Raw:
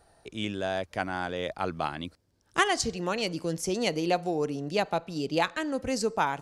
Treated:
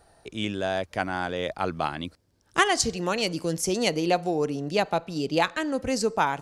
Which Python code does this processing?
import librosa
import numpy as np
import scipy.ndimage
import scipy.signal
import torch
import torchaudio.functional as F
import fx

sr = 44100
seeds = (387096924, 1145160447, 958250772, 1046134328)

y = fx.high_shelf(x, sr, hz=6100.0, db=5.0, at=(2.75, 3.9))
y = F.gain(torch.from_numpy(y), 3.0).numpy()